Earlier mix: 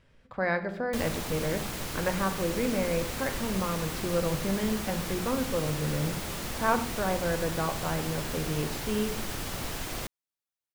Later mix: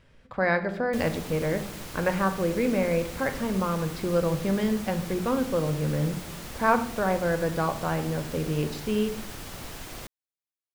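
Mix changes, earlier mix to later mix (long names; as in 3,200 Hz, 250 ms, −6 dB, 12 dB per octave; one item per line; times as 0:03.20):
speech +4.0 dB
background −4.5 dB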